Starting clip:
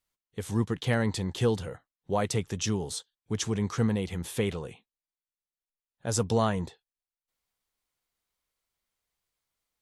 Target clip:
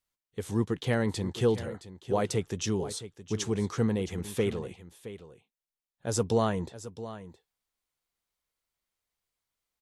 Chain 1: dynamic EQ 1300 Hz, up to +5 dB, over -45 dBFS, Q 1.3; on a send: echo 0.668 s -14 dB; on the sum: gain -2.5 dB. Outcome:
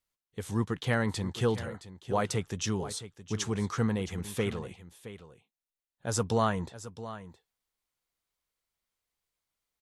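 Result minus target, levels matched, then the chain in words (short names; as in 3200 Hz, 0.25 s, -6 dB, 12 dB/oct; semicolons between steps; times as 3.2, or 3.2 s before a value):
1000 Hz band +3.5 dB
dynamic EQ 380 Hz, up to +5 dB, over -45 dBFS, Q 1.3; on a send: echo 0.668 s -14 dB; on the sum: gain -2.5 dB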